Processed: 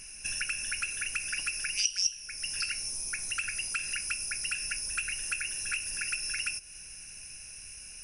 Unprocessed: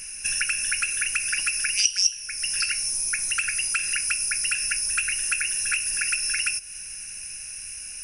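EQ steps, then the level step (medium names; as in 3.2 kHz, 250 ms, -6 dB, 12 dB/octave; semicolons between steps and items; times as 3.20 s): peaking EQ 1.8 kHz -6 dB 1.3 oct; treble shelf 6.3 kHz -11 dB; -2.0 dB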